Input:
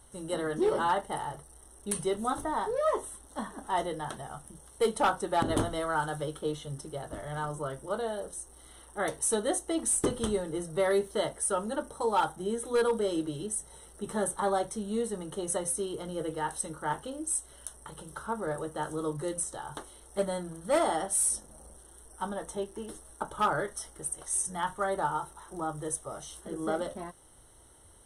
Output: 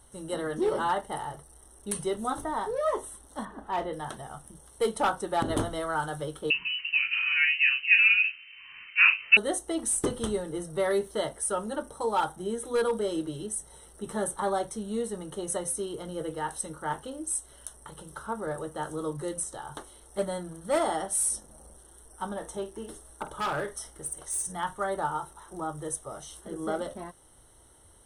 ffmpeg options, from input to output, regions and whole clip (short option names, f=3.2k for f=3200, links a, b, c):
-filter_complex "[0:a]asettb=1/sr,asplit=3[a][b][c];[a]atrim=end=3.454[d];[b]atrim=start=3.45:end=3.93,asetpts=PTS-STARTPTS,afade=t=in:d=0.004:c=qsin,afade=t=out:st=0.476:d=0.004:c=qsin,bass=f=250:g=1,treble=f=4k:g=-15,asoftclip=type=hard:threshold=-24dB,asplit=2[e][f];[f]adelay=37,volume=-12dB[g];[e][g]amix=inputs=2:normalize=0,atrim=end_sample=21168[h];[c]atrim=start=3.926[i];[d][h]acrossfade=d=0.004:c1=hsin:c2=qsin[j];[j][i]acrossfade=d=0.004:c1=qsin:c2=hsin,asettb=1/sr,asplit=3[k][l][m];[k]atrim=end=6.504[n];[l]atrim=start=6.5:end=9.37,asetpts=PTS-STARTPTS,afade=t=in:d=0.004:c=qsin,afade=t=out:st=2.866:d=0.004:c=qsin,equalizer=f=550:t=o:w=2.9:g=13,asplit=2[o][p];[p]adelay=37,volume=-8dB[q];[o][q]amix=inputs=2:normalize=0,atrim=end_sample=126567,lowpass=f=2.6k:t=q:w=0.5098,lowpass=f=2.6k:t=q:w=0.6013,lowpass=f=2.6k:t=q:w=0.9,lowpass=f=2.6k:t=q:w=2.563,afreqshift=-3100[r];[m]atrim=start=9.366[s];[n][r]acrossfade=d=0.004:c1=hsin:c2=qsin[t];[t][s]acrossfade=d=0.004:c1=qsin:c2=hsin,asettb=1/sr,asplit=3[u][v][w];[u]atrim=end=22.254[x];[v]atrim=start=22.25:end=24.53,asetpts=PTS-STARTPTS,afade=t=in:d=0.004:c=qsin,afade=t=out:st=2.276:d=0.004:c=qsin,asoftclip=type=hard:threshold=-26.5dB,asplit=2[y][z];[z]adelay=49,volume=-12dB[aa];[y][aa]amix=inputs=2:normalize=0,atrim=end_sample=100548[ab];[w]atrim=start=24.526[ac];[x][ab]acrossfade=d=0.004:c1=hsin:c2=qsin[ad];[ad][ac]acrossfade=d=0.004:c1=qsin:c2=hsin"